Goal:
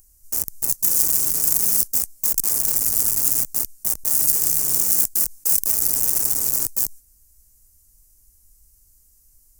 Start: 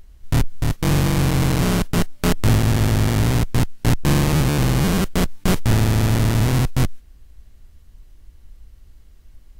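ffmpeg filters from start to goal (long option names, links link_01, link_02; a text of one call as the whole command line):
ffmpeg -i in.wav -af "aeval=exprs='(mod(9.44*val(0)+1,2)-1)/9.44':channel_layout=same,aexciter=amount=15.1:drive=7.9:freq=5500,volume=-15dB" out.wav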